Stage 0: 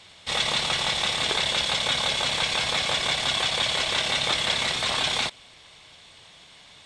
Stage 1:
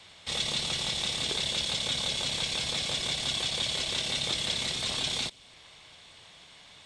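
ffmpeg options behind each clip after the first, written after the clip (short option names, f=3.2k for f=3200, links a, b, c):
-filter_complex "[0:a]acrossover=split=470|3000[a][b][c];[b]acompressor=threshold=-45dB:ratio=2.5[d];[a][d][c]amix=inputs=3:normalize=0,volume=-2.5dB"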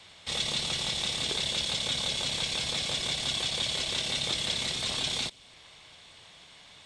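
-af anull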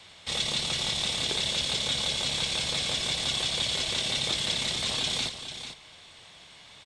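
-af "aecho=1:1:443:0.316,volume=1.5dB"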